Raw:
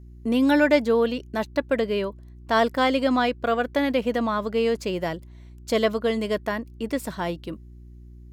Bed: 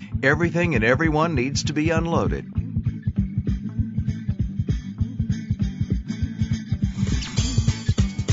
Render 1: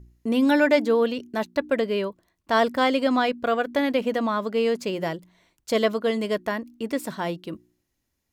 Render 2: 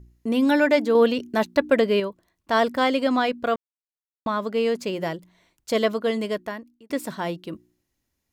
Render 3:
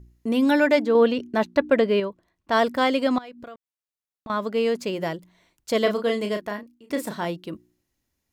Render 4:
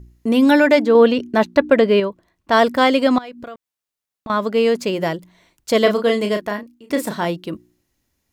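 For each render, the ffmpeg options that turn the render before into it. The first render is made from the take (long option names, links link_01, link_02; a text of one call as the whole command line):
ffmpeg -i in.wav -af "bandreject=frequency=60:width_type=h:width=4,bandreject=frequency=120:width_type=h:width=4,bandreject=frequency=180:width_type=h:width=4,bandreject=frequency=240:width_type=h:width=4,bandreject=frequency=300:width_type=h:width=4,bandreject=frequency=360:width_type=h:width=4" out.wav
ffmpeg -i in.wav -filter_complex "[0:a]asplit=6[link_01][link_02][link_03][link_04][link_05][link_06];[link_01]atrim=end=0.952[link_07];[link_02]atrim=start=0.948:end=2.002,asetpts=PTS-STARTPTS,volume=4.5dB[link_08];[link_03]atrim=start=1.998:end=3.56,asetpts=PTS-STARTPTS,afade=type=out:start_time=1.558:duration=0.004:curve=hsin[link_09];[link_04]atrim=start=3.56:end=4.26,asetpts=PTS-STARTPTS,volume=0[link_10];[link_05]atrim=start=4.26:end=6.9,asetpts=PTS-STARTPTS,afade=type=in:duration=0.004:curve=hsin,afade=type=out:start_time=1.95:duration=0.69[link_11];[link_06]atrim=start=6.9,asetpts=PTS-STARTPTS,afade=type=in:duration=0.004:curve=hsin[link_12];[link_07][link_08]acrossfade=duration=0.004:curve1=hsin:curve2=hsin[link_13];[link_09][link_10][link_11][link_12]concat=n=4:v=0:a=1[link_14];[link_13][link_14]acrossfade=duration=0.004:curve1=hsin:curve2=hsin" out.wav
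ffmpeg -i in.wav -filter_complex "[0:a]asettb=1/sr,asplit=3[link_01][link_02][link_03];[link_01]atrim=end=0.794[link_04];[link_02]atrim=start=0.79:end=2.52,asetpts=PTS-STARTPTS,afade=type=in:duration=0.004:curve=qsin,afade=type=out:start_time=1.726:duration=0.004:curve=qsin,lowpass=frequency=3500:poles=1[link_05];[link_03]atrim=start=2.516[link_06];[link_04][link_05]acrossfade=duration=0.004:curve1=hsin:curve2=qsin[link_07];[link_07][link_06]acrossfade=duration=0.004:curve1=qsin:curve2=hsin,asettb=1/sr,asplit=3[link_08][link_09][link_10];[link_08]atrim=end=3.184[link_11];[link_09]atrim=start=3.18:end=4.3,asetpts=PTS-STARTPTS,afade=type=in:duration=0.004:curve=qsin,afade=type=out:start_time=1.116:duration=0.004:curve=qsin,acompressor=threshold=-36dB:ratio=16:attack=3.2:release=140:knee=1:detection=peak[link_12];[link_10]atrim=start=4.296[link_13];[link_11][link_12]acrossfade=duration=0.004:curve1=hsin:curve2=qsin[link_14];[link_14][link_13]acrossfade=duration=0.004:curve1=qsin:curve2=hsin,asettb=1/sr,asplit=3[link_15][link_16][link_17];[link_15]atrim=end=5.824[link_18];[link_16]atrim=start=5.82:end=7.25,asetpts=PTS-STARTPTS,afade=type=in:duration=0.004:curve=qsin,afade=type=out:start_time=1.426:duration=0.004:curve=qsin,asplit=2[link_19][link_20];[link_20]adelay=34,volume=-6.5dB[link_21];[link_19][link_21]amix=inputs=2:normalize=0,atrim=end_sample=63063[link_22];[link_17]atrim=start=7.246[link_23];[link_18][link_22]acrossfade=duration=0.004:curve1=hsin:curve2=qsin[link_24];[link_24][link_23]acrossfade=duration=0.004:curve1=qsin:curve2=hsin" out.wav
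ffmpeg -i in.wav -af "volume=6.5dB,alimiter=limit=-3dB:level=0:latency=1" out.wav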